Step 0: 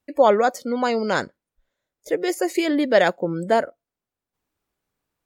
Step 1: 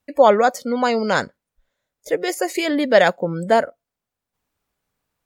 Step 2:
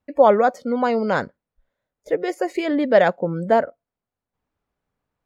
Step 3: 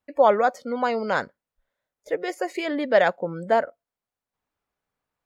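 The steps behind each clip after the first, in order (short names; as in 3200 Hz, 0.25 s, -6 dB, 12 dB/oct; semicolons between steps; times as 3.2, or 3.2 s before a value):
bell 340 Hz -6.5 dB 0.44 oct; gain +3.5 dB
LPF 1300 Hz 6 dB/oct
low shelf 470 Hz -9.5 dB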